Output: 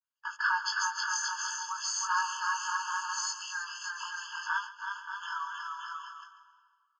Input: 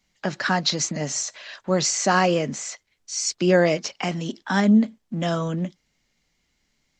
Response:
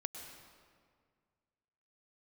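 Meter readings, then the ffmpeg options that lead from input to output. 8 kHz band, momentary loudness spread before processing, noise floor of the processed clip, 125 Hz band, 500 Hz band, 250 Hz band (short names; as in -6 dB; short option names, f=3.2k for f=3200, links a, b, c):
-8.0 dB, 13 LU, -74 dBFS, under -40 dB, under -40 dB, under -40 dB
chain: -filter_complex "[0:a]adynamicequalizer=threshold=0.0112:dfrequency=4800:dqfactor=0.95:tfrequency=4800:tqfactor=0.95:attack=5:release=100:ratio=0.375:range=3:mode=boostabove:tftype=bell,aecho=1:1:320|576|780.8|944.6|1076:0.631|0.398|0.251|0.158|0.1,agate=range=-18dB:threshold=-31dB:ratio=16:detection=peak,highshelf=f=2k:t=q:w=1.5:g=-6.5,flanger=delay=18.5:depth=2.7:speed=0.46,aresample=16000,aresample=44100,asplit=2[a][b];[1:a]atrim=start_sample=2205,adelay=139[c];[b][c]afir=irnorm=-1:irlink=0,volume=-10dB[d];[a][d]amix=inputs=2:normalize=0,acompressor=threshold=-25dB:ratio=6,afftfilt=real='re*eq(mod(floor(b*sr/1024/870),2),1)':imag='im*eq(mod(floor(b*sr/1024/870),2),1)':win_size=1024:overlap=0.75,volume=2.5dB"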